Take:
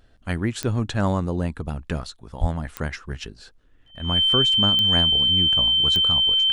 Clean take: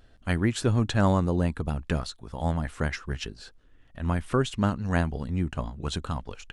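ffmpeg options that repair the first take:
-filter_complex "[0:a]adeclick=t=4,bandreject=f=3100:w=30,asplit=3[s0][s1][s2];[s0]afade=t=out:st=2.4:d=0.02[s3];[s1]highpass=f=140:w=0.5412,highpass=f=140:w=1.3066,afade=t=in:st=2.4:d=0.02,afade=t=out:st=2.52:d=0.02[s4];[s2]afade=t=in:st=2.52:d=0.02[s5];[s3][s4][s5]amix=inputs=3:normalize=0"

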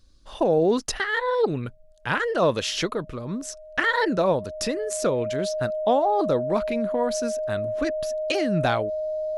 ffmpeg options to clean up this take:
-af "bandreject=f=620:w=30"

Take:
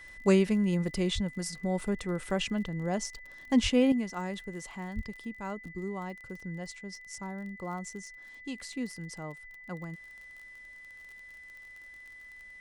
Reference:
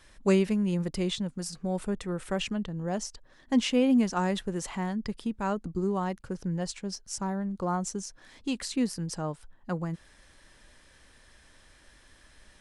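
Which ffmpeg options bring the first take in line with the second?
-filter_complex "[0:a]adeclick=t=4,bandreject=f=2000:w=30,asplit=3[s0][s1][s2];[s0]afade=t=out:st=1.14:d=0.02[s3];[s1]highpass=f=140:w=0.5412,highpass=f=140:w=1.3066,afade=t=in:st=1.14:d=0.02,afade=t=out:st=1.26:d=0.02[s4];[s2]afade=t=in:st=1.26:d=0.02[s5];[s3][s4][s5]amix=inputs=3:normalize=0,asplit=3[s6][s7][s8];[s6]afade=t=out:st=3.62:d=0.02[s9];[s7]highpass=f=140:w=0.5412,highpass=f=140:w=1.3066,afade=t=in:st=3.62:d=0.02,afade=t=out:st=3.74:d=0.02[s10];[s8]afade=t=in:st=3.74:d=0.02[s11];[s9][s10][s11]amix=inputs=3:normalize=0,asplit=3[s12][s13][s14];[s12]afade=t=out:st=4.95:d=0.02[s15];[s13]highpass=f=140:w=0.5412,highpass=f=140:w=1.3066,afade=t=in:st=4.95:d=0.02,afade=t=out:st=5.07:d=0.02[s16];[s14]afade=t=in:st=5.07:d=0.02[s17];[s15][s16][s17]amix=inputs=3:normalize=0,asetnsamples=n=441:p=0,asendcmd='3.92 volume volume 8dB',volume=1"

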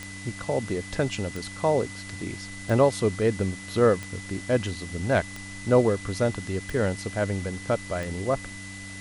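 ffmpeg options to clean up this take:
-af "adeclick=t=4,bandreject=f=96.7:t=h:w=4,bandreject=f=193.4:t=h:w=4,bandreject=f=290.1:t=h:w=4,bandreject=f=2000:w=30,afftdn=nr=30:nf=-39"

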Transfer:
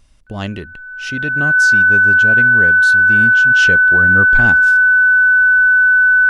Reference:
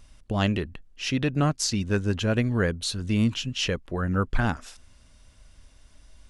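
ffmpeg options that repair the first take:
-af "bandreject=f=1500:w=30,asetnsamples=n=441:p=0,asendcmd='3.5 volume volume -5dB',volume=1"

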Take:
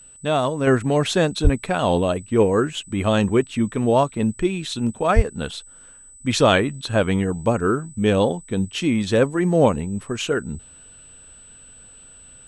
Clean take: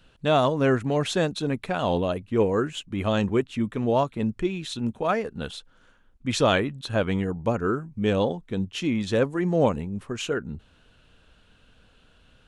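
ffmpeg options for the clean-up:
-filter_complex "[0:a]bandreject=f=8000:w=30,asplit=3[s0][s1][s2];[s0]afade=t=out:st=1.43:d=0.02[s3];[s1]highpass=f=140:w=0.5412,highpass=f=140:w=1.3066,afade=t=in:st=1.43:d=0.02,afade=t=out:st=1.55:d=0.02[s4];[s2]afade=t=in:st=1.55:d=0.02[s5];[s3][s4][s5]amix=inputs=3:normalize=0,asplit=3[s6][s7][s8];[s6]afade=t=out:st=5.15:d=0.02[s9];[s7]highpass=f=140:w=0.5412,highpass=f=140:w=1.3066,afade=t=in:st=5.15:d=0.02,afade=t=out:st=5.27:d=0.02[s10];[s8]afade=t=in:st=5.27:d=0.02[s11];[s9][s10][s11]amix=inputs=3:normalize=0,asetnsamples=n=441:p=0,asendcmd='0.67 volume volume -5dB',volume=1"

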